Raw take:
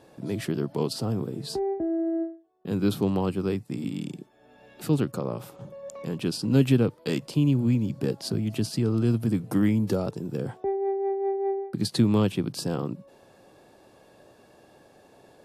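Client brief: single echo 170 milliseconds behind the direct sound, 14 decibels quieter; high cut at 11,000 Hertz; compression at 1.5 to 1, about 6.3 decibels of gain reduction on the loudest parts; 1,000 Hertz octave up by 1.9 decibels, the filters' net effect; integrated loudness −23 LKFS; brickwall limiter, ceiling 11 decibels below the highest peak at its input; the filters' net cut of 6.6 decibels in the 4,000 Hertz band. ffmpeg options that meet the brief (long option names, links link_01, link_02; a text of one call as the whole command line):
ffmpeg -i in.wav -af "lowpass=11000,equalizer=frequency=1000:width_type=o:gain=3,equalizer=frequency=4000:width_type=o:gain=-8.5,acompressor=threshold=-32dB:ratio=1.5,alimiter=level_in=2dB:limit=-24dB:level=0:latency=1,volume=-2dB,aecho=1:1:170:0.2,volume=12.5dB" out.wav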